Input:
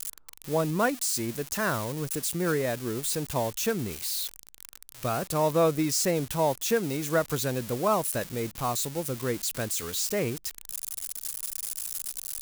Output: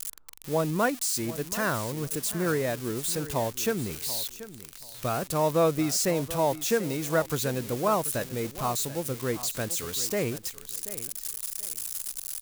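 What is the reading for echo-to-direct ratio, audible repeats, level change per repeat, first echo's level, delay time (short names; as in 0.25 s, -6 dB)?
-15.0 dB, 2, -13.0 dB, -15.0 dB, 0.734 s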